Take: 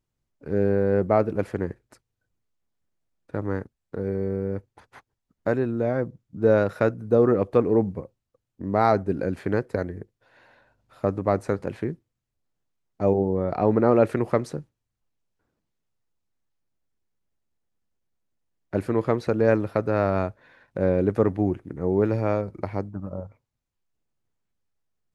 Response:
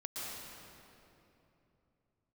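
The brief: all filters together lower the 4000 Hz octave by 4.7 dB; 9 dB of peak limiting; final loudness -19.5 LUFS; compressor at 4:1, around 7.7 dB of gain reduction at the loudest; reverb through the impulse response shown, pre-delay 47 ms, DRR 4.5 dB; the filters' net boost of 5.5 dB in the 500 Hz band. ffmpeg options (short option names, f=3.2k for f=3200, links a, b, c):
-filter_complex "[0:a]equalizer=f=500:t=o:g=6.5,equalizer=f=4k:t=o:g=-5.5,acompressor=threshold=-18dB:ratio=4,alimiter=limit=-14.5dB:level=0:latency=1,asplit=2[a][b];[1:a]atrim=start_sample=2205,adelay=47[c];[b][c]afir=irnorm=-1:irlink=0,volume=-5.5dB[d];[a][d]amix=inputs=2:normalize=0,volume=6.5dB"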